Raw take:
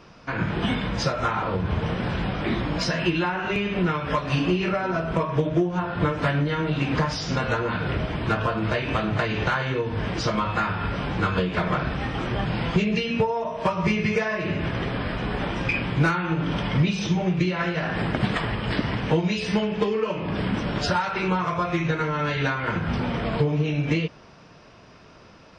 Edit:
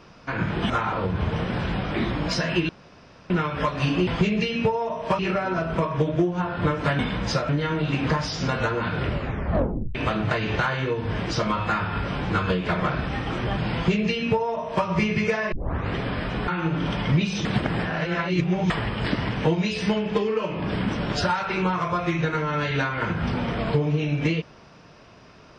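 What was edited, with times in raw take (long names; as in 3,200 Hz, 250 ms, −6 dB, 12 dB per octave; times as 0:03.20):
0:00.70–0:01.20: move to 0:06.37
0:03.19–0:03.80: fill with room tone
0:07.97: tape stop 0.86 s
0:12.62–0:13.74: duplicate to 0:04.57
0:14.40: tape start 0.42 s
0:15.36–0:16.14: remove
0:17.11–0:18.36: reverse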